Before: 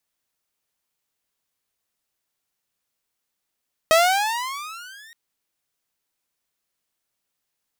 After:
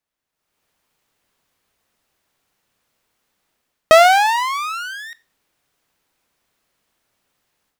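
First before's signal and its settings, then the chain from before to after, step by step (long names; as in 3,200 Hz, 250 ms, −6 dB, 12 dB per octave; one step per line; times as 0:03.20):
pitch glide with a swell saw, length 1.22 s, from 630 Hz, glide +19 semitones, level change −32.5 dB, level −9 dB
high-shelf EQ 3,700 Hz −10 dB
automatic gain control gain up to 15 dB
four-comb reverb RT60 0.32 s, combs from 25 ms, DRR 19 dB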